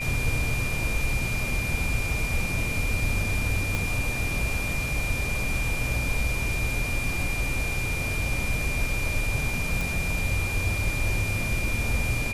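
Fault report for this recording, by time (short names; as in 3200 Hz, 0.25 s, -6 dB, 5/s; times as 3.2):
tone 2400 Hz -30 dBFS
3.75 pop -13 dBFS
9.81 pop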